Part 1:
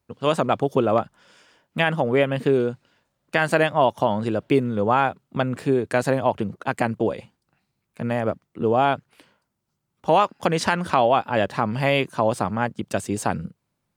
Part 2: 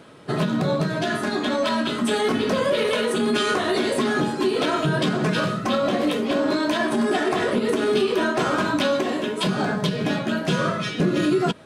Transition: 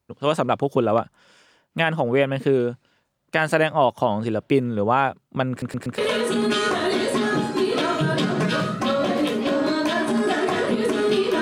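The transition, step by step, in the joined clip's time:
part 1
5.50 s: stutter in place 0.12 s, 4 plays
5.98 s: go over to part 2 from 2.82 s

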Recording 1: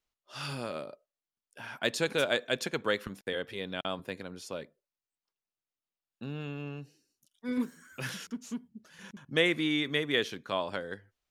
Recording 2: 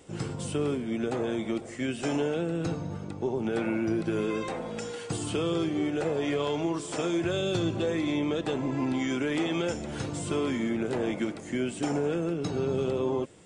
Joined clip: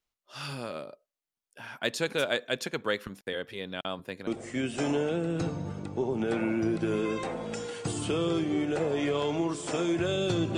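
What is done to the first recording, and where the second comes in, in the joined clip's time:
recording 1
4.27 s: go over to recording 2 from 1.52 s

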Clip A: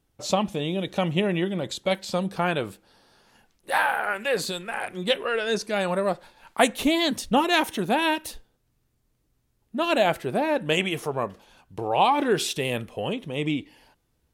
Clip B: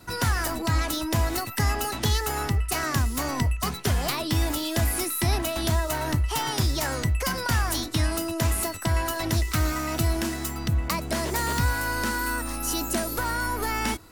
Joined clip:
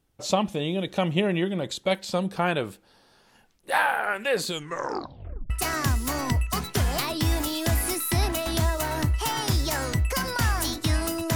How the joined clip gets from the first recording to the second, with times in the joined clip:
clip A
4.46 s: tape stop 1.04 s
5.50 s: go over to clip B from 2.60 s

